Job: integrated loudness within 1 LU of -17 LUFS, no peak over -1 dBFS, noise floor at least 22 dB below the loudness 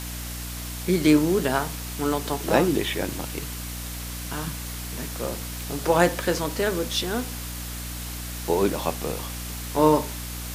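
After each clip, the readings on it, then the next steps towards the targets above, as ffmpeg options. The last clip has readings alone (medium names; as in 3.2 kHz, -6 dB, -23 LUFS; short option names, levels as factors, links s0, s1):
hum 60 Hz; highest harmonic 300 Hz; hum level -33 dBFS; noise floor -34 dBFS; noise floor target -48 dBFS; loudness -26.0 LUFS; peak level -4.0 dBFS; loudness target -17.0 LUFS
-> -af "bandreject=f=60:t=h:w=6,bandreject=f=120:t=h:w=6,bandreject=f=180:t=h:w=6,bandreject=f=240:t=h:w=6,bandreject=f=300:t=h:w=6"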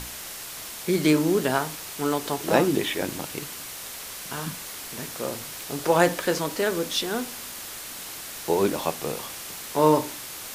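hum not found; noise floor -38 dBFS; noise floor target -49 dBFS
-> -af "afftdn=nr=11:nf=-38"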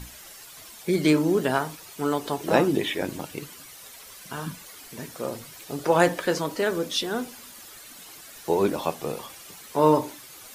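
noise floor -46 dBFS; noise floor target -48 dBFS
-> -af "afftdn=nr=6:nf=-46"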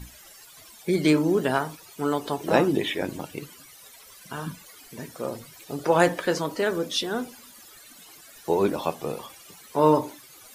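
noise floor -49 dBFS; loudness -25.5 LUFS; peak level -5.0 dBFS; loudness target -17.0 LUFS
-> -af "volume=2.66,alimiter=limit=0.891:level=0:latency=1"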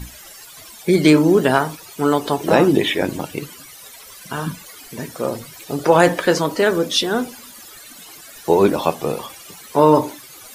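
loudness -17.5 LUFS; peak level -1.0 dBFS; noise floor -41 dBFS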